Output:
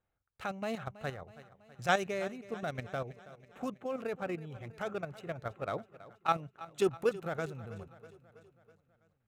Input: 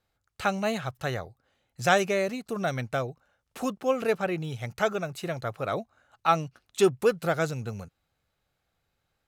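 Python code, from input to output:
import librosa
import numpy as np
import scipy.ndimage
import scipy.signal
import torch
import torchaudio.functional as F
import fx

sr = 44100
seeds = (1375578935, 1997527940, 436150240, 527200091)

p1 = fx.wiener(x, sr, points=9)
p2 = fx.level_steps(p1, sr, step_db=10)
p3 = p2 + fx.echo_feedback(p2, sr, ms=325, feedback_pct=58, wet_db=-17.0, dry=0)
y = F.gain(torch.from_numpy(p3), -4.5).numpy()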